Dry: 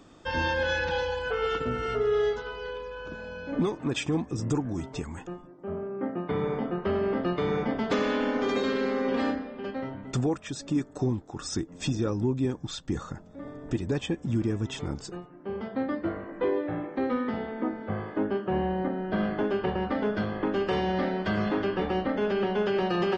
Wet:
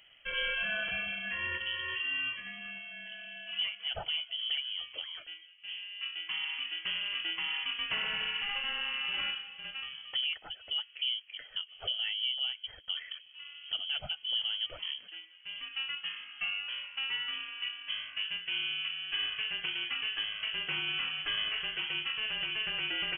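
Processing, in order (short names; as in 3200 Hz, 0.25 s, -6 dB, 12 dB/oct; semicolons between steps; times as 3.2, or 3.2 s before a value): bell 370 Hz -6 dB 0.89 oct; inverted band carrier 3200 Hz; gain -5 dB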